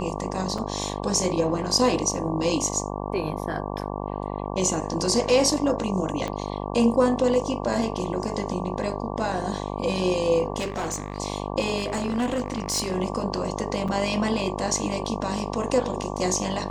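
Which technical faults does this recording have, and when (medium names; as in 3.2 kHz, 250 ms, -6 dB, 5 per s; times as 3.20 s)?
buzz 50 Hz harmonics 23 -31 dBFS
0.58 s: dropout 4.3 ms
6.28 s: pop -16 dBFS
10.58–11.18 s: clipped -24 dBFS
11.77–12.97 s: clipped -21 dBFS
13.88–13.89 s: dropout 5.3 ms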